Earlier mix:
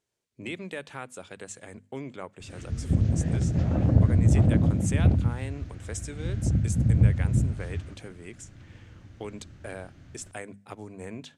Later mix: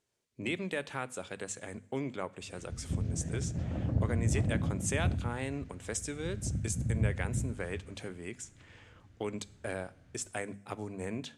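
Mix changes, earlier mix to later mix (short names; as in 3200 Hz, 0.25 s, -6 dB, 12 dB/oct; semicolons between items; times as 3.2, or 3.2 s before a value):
speech: send +11.0 dB; background -10.5 dB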